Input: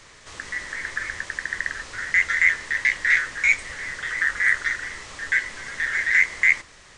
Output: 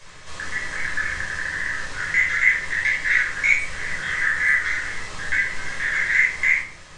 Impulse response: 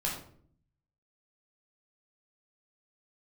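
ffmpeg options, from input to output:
-filter_complex "[0:a]acompressor=threshold=-24dB:ratio=1.5[a];[1:a]atrim=start_sample=2205[b];[a][b]afir=irnorm=-1:irlink=0,volume=-1dB"

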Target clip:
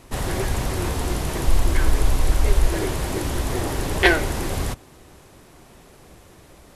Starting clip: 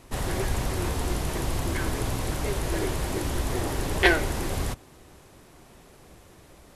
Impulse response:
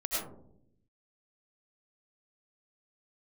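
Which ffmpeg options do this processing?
-filter_complex "[0:a]asplit=3[a][b][c];[a]afade=t=out:st=1.45:d=0.02[d];[b]asubboost=boost=9.5:cutoff=51,afade=t=in:st=1.45:d=0.02,afade=t=out:st=2.68:d=0.02[e];[c]afade=t=in:st=2.68:d=0.02[f];[d][e][f]amix=inputs=3:normalize=0,volume=3.5dB"

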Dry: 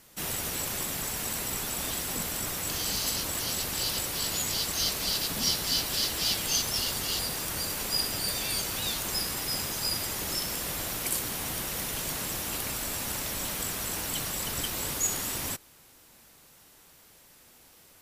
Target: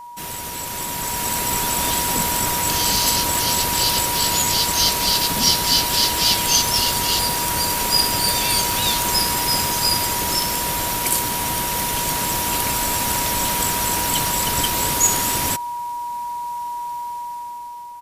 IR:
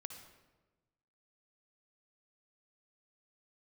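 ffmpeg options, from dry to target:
-af "aresample=32000,aresample=44100,aeval=exprs='val(0)+0.0158*sin(2*PI*960*n/s)':c=same,dynaudnorm=f=320:g=7:m=10dB,volume=1.5dB"

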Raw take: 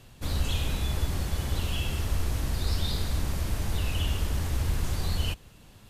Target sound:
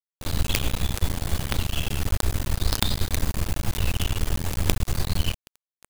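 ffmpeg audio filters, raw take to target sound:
-af "bandreject=f=5.5k:w=18,acrusher=bits=4:dc=4:mix=0:aa=0.000001,volume=6.5dB"

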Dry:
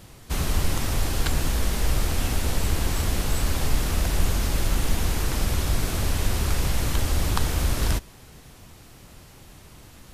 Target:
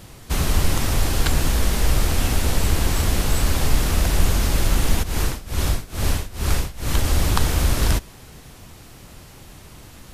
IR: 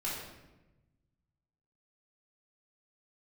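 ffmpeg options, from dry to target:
-filter_complex "[0:a]asplit=3[a][b][c];[a]afade=t=out:st=5.02:d=0.02[d];[b]tremolo=f=2.3:d=0.91,afade=t=in:st=5.02:d=0.02,afade=t=out:st=7.03:d=0.02[e];[c]afade=t=in:st=7.03:d=0.02[f];[d][e][f]amix=inputs=3:normalize=0,volume=4.5dB"

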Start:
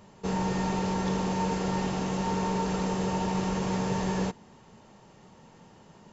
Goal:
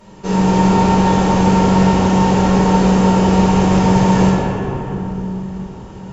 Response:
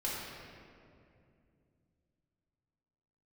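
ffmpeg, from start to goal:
-filter_complex "[1:a]atrim=start_sample=2205,asetrate=26901,aresample=44100[a];[0:a][a]afir=irnorm=-1:irlink=0,volume=6.5dB"

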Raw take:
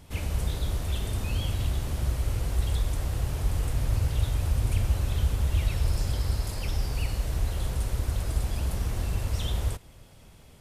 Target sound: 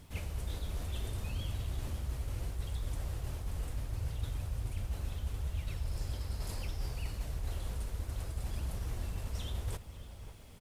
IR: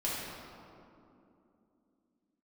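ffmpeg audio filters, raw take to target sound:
-filter_complex "[0:a]areverse,acompressor=threshold=-32dB:ratio=6,areverse,flanger=delay=0.5:depth=4.3:regen=-68:speed=0.7:shape=triangular,acrusher=bits=11:mix=0:aa=0.000001,asplit=2[a][b];[b]adelay=548.1,volume=-12dB,highshelf=f=4k:g=-12.3[c];[a][c]amix=inputs=2:normalize=0,volume=2dB"

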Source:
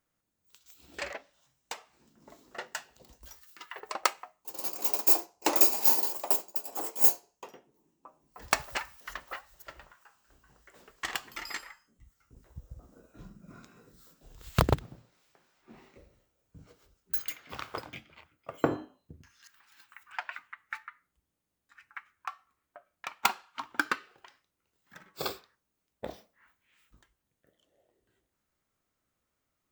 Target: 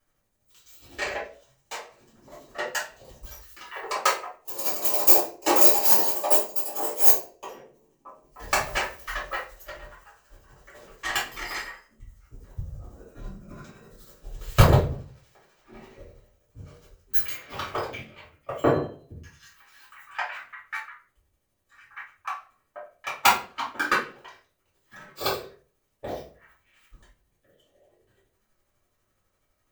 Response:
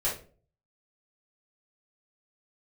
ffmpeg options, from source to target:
-filter_complex "[0:a]tremolo=f=12:d=0.6[a];[1:a]atrim=start_sample=2205[b];[a][b]afir=irnorm=-1:irlink=0,volume=3.5dB"

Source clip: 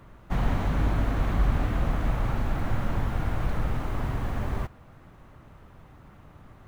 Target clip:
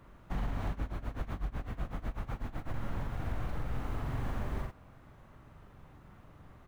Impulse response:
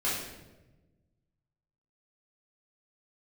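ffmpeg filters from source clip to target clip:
-filter_complex "[0:a]asplit=2[a][b];[b]adelay=44,volume=-3.5dB[c];[a][c]amix=inputs=2:normalize=0,alimiter=limit=-19dB:level=0:latency=1:release=184,asettb=1/sr,asplit=3[d][e][f];[d]atrim=end=0.704[g];[e]atrim=start=0.7:end=2.74,asetpts=PTS-STARTPTS,afade=t=in:d=0.004:c=qsin,afade=t=out:st=2.036:d=0.004:c=qsin,tremolo=f=8:d=0.88[h];[f]atrim=start=2.736[i];[g][h]acrossfade=d=0.004:c1=hsin:c2=qsin[j];[j][i]acrossfade=d=0.004:c1=qsin:c2=hsin,volume=-6.5dB"

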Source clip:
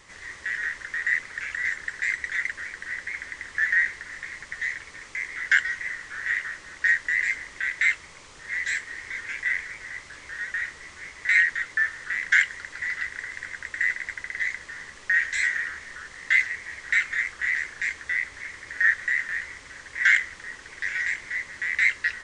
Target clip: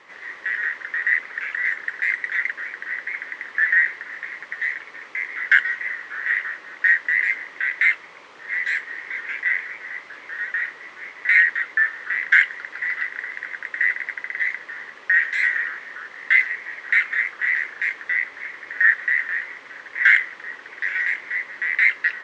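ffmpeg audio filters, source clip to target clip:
-af "highpass=320,lowpass=2.6k,volume=5.5dB"

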